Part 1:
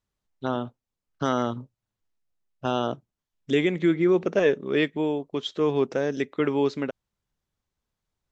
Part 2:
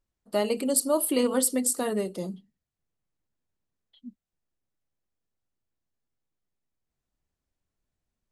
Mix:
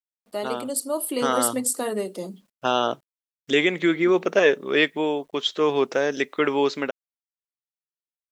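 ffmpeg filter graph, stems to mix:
-filter_complex "[0:a]highpass=f=750:p=1,volume=1.19[s0];[1:a]highpass=240,volume=0.668[s1];[s0][s1]amix=inputs=2:normalize=0,dynaudnorm=f=390:g=7:m=2.24,acrusher=bits=10:mix=0:aa=0.000001"

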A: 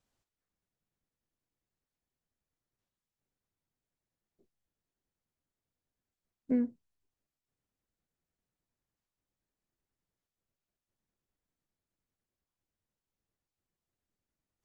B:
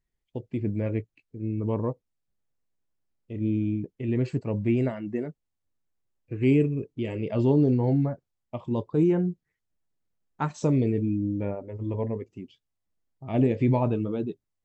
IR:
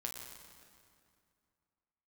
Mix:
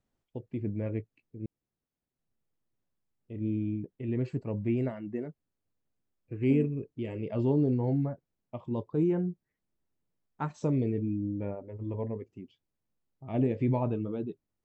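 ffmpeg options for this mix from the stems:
-filter_complex "[0:a]equalizer=f=220:t=o:w=2.8:g=6.5,acompressor=threshold=0.0251:ratio=6,volume=0.794[s0];[1:a]volume=0.562,asplit=3[s1][s2][s3];[s1]atrim=end=1.46,asetpts=PTS-STARTPTS,afade=t=out:st=1.456:d=0.004:c=hsin[s4];[s2]atrim=start=1.46:end=2.19,asetpts=PTS-STARTPTS,volume=0[s5];[s3]atrim=start=2.19,asetpts=PTS-STARTPTS,afade=t=in:d=0.004:c=hsin[s6];[s4][s5][s6]concat=n=3:v=0:a=1[s7];[s0][s7]amix=inputs=2:normalize=0,highshelf=f=3100:g=-7"

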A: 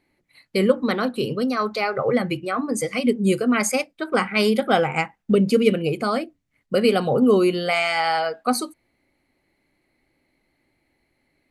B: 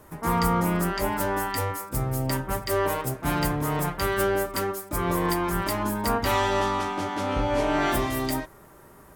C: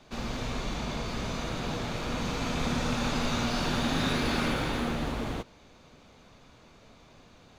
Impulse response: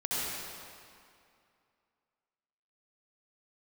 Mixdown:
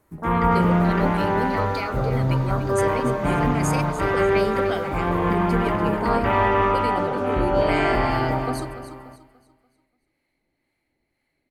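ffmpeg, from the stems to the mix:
-filter_complex "[0:a]acompressor=threshold=0.112:ratio=6,acrossover=split=740[s0][s1];[s0]aeval=exprs='val(0)*(1-0.5/2+0.5/2*cos(2*PI*2*n/s))':c=same[s2];[s1]aeval=exprs='val(0)*(1-0.5/2-0.5/2*cos(2*PI*2*n/s))':c=same[s3];[s2][s3]amix=inputs=2:normalize=0,volume=0.631,asplit=2[s4][s5];[s5]volume=0.251[s6];[1:a]afwtdn=0.0251,acrossover=split=3900[s7][s8];[s8]acompressor=threshold=0.00126:ratio=4:attack=1:release=60[s9];[s7][s9]amix=inputs=2:normalize=0,volume=1.06,asplit=3[s10][s11][s12];[s11]volume=0.355[s13];[s12]volume=0.422[s14];[2:a]acompressor=threshold=0.02:ratio=6,adelay=400,volume=0.282,asplit=2[s15][s16];[s16]volume=0.398[s17];[3:a]atrim=start_sample=2205[s18];[s13][s17]amix=inputs=2:normalize=0[s19];[s19][s18]afir=irnorm=-1:irlink=0[s20];[s6][s14]amix=inputs=2:normalize=0,aecho=0:1:291|582|873|1164|1455:1|0.37|0.137|0.0507|0.0187[s21];[s4][s10][s15][s20][s21]amix=inputs=5:normalize=0"

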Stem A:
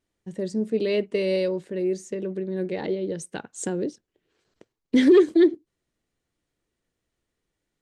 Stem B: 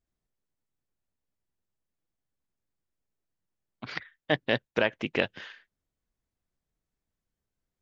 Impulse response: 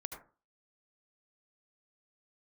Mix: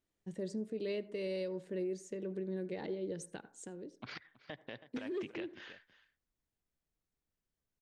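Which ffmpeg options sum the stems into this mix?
-filter_complex "[0:a]volume=0.355,afade=t=out:st=3.19:d=0.5:silence=0.237137,asplit=2[s0][s1];[s1]volume=0.316[s2];[1:a]acompressor=threshold=0.0282:ratio=4,adelay=200,volume=0.501,asplit=3[s3][s4][s5];[s4]volume=0.168[s6];[s5]volume=0.133[s7];[2:a]atrim=start_sample=2205[s8];[s2][s6]amix=inputs=2:normalize=0[s9];[s9][s8]afir=irnorm=-1:irlink=0[s10];[s7]aecho=0:1:323:1[s11];[s0][s3][s10][s11]amix=inputs=4:normalize=0,alimiter=level_in=2.11:limit=0.0631:level=0:latency=1:release=338,volume=0.473"

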